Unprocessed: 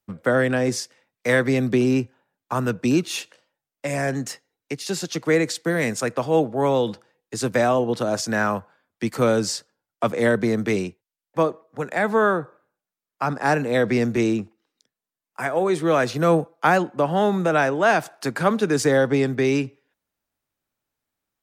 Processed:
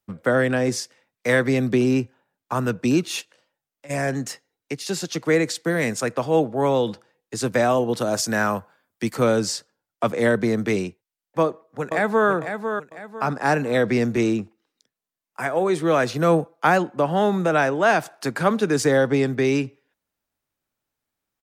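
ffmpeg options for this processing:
-filter_complex "[0:a]asplit=3[a][b][c];[a]afade=t=out:st=3.2:d=0.02[d];[b]acompressor=threshold=-54dB:ratio=2:attack=3.2:release=140:knee=1:detection=peak,afade=t=in:st=3.2:d=0.02,afade=t=out:st=3.89:d=0.02[e];[c]afade=t=in:st=3.89:d=0.02[f];[d][e][f]amix=inputs=3:normalize=0,asettb=1/sr,asplit=3[g][h][i];[g]atrim=end=7.694[j];[h]atrim=start=7.69:end=9.13,asetpts=PTS-STARTPTS,afade=t=in:d=0.004:c=qsin,afade=t=out:st=1.436:d=0.004:c=qsin,highshelf=f=7.9k:g=10[k];[i]atrim=start=9.126[l];[j][k]acrossfade=d=0.004:c1=hsin:c2=qsin[m];[m][l]acrossfade=d=0.004:c1=qsin:c2=hsin,asplit=2[n][o];[o]afade=t=in:st=11.41:d=0.01,afade=t=out:st=12.29:d=0.01,aecho=0:1:500|1000|1500|2000:0.421697|0.147594|0.0516578|0.0180802[p];[n][p]amix=inputs=2:normalize=0"

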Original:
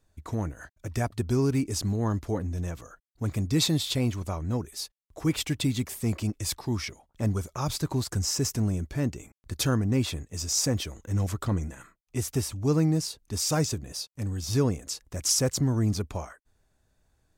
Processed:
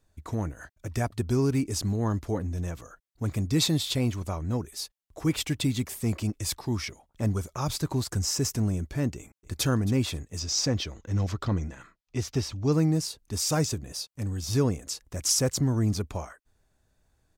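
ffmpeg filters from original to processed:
-filter_complex "[0:a]asplit=2[a][b];[b]afade=t=in:st=9.16:d=0.01,afade=t=out:st=9.64:d=0.01,aecho=0:1:270|540:0.149624|0.0224435[c];[a][c]amix=inputs=2:normalize=0,asettb=1/sr,asplit=3[d][e][f];[d]atrim=end=10.394[g];[e]atrim=start=10.39:end=12.72,asetpts=PTS-STARTPTS,afade=t=in:d=0.004:c=qsin,afade=t=out:st=2.326:d=0.004:c=qsin,highshelf=f=7k:t=q:w=1.5:g=-11.5[h];[f]atrim=start=12.716[i];[g][h]acrossfade=d=0.004:c1=hsin:c2=qsin[j];[j][i]acrossfade=d=0.004:c1=qsin:c2=hsin"

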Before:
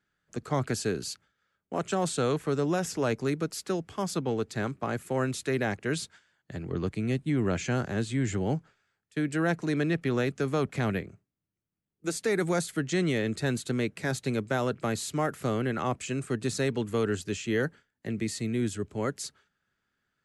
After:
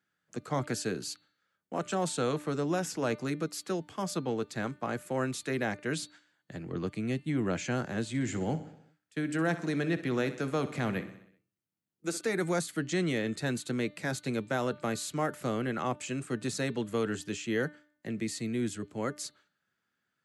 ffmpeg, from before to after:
-filter_complex "[0:a]asettb=1/sr,asplit=3[a][b][c];[a]atrim=end=8.084[d];[b]atrim=start=8.08:end=12.21,asetpts=PTS-STARTPTS,afade=t=in:d=0.004:c=qsin,afade=t=out:st=4.126:d=0.004:c=qsin,aecho=1:1:63|126|189|252|315|378:0.2|0.118|0.0695|0.041|0.0242|0.0143,atrim=end_sample=182133[e];[c]atrim=start=12.206[f];[d][e]acrossfade=d=0.004:c1=hsin:c2=qsin[g];[g][f]acrossfade=d=0.004:c1=qsin:c2=hsin,highpass=130,bandreject=f=410:w=12,bandreject=f=298.1:t=h:w=4,bandreject=f=596.2:t=h:w=4,bandreject=f=894.3:t=h:w=4,bandreject=f=1.1924k:t=h:w=4,bandreject=f=1.4905k:t=h:w=4,bandreject=f=1.7886k:t=h:w=4,bandreject=f=2.0867k:t=h:w=4,bandreject=f=2.3848k:t=h:w=4,bandreject=f=2.6829k:t=h:w=4,bandreject=f=2.981k:t=h:w=4,bandreject=f=3.2791k:t=h:w=4,bandreject=f=3.5772k:t=h:w=4,bandreject=f=3.8753k:t=h:w=4,bandreject=f=4.1734k:t=h:w=4,bandreject=f=4.4715k:t=h:w=4,volume=-2dB"

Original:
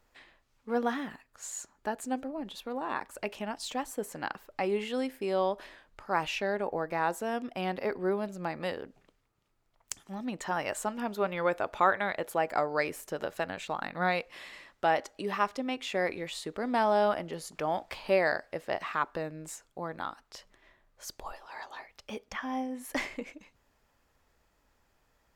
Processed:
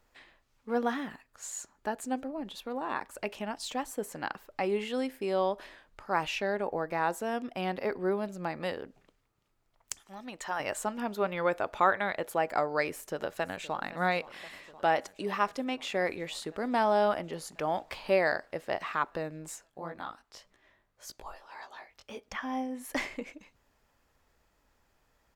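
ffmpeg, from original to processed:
-filter_complex "[0:a]asettb=1/sr,asplit=3[a][b][c];[a]atrim=end=9.964[d];[b]atrim=start=9.96:end=10.6,asetpts=PTS-STARTPTS,afade=t=in:d=0.004:c=qsin,afade=t=out:st=0.636:d=0.004:c=qsin,equalizer=f=160:t=o:w=2.7:g=-11.5[e];[c]atrim=start=10.596[f];[d][e]acrossfade=d=0.004:c1=hsin:c2=qsin[g];[g][f]acrossfade=d=0.004:c1=qsin:c2=hsin,asplit=2[h][i];[i]afade=t=in:st=12.9:d=0.01,afade=t=out:st=13.91:d=0.01,aecho=0:1:520|1040|1560|2080|2600|3120|3640|4160|4680|5200|5720|6240:0.133352|0.106682|0.0853454|0.0682763|0.054621|0.0436968|0.0349575|0.027966|0.0223728|0.0178982|0.0143186|0.0114549[j];[h][j]amix=inputs=2:normalize=0,asplit=3[k][l][m];[k]afade=t=out:st=19.63:d=0.02[n];[l]flanger=delay=15.5:depth=6.1:speed=1.8,afade=t=in:st=19.63:d=0.02,afade=t=out:st=22.23:d=0.02[o];[m]afade=t=in:st=22.23:d=0.02[p];[n][o][p]amix=inputs=3:normalize=0"

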